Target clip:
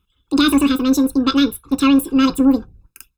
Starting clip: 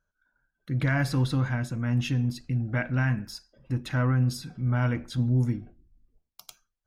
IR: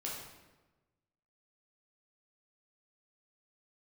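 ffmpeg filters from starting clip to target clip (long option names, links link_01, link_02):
-af "aecho=1:1:1.7:0.94,asetrate=95256,aresample=44100,volume=8.5dB"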